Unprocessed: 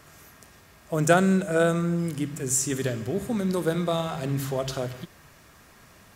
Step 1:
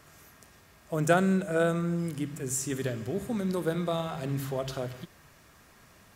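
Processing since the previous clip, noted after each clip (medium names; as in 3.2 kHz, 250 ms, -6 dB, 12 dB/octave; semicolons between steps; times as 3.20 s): dynamic bell 6.7 kHz, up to -4 dB, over -46 dBFS, Q 0.93; trim -4 dB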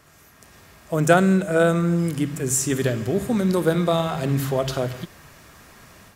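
level rider gain up to 8 dB; trim +1.5 dB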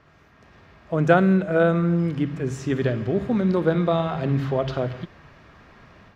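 distance through air 250 m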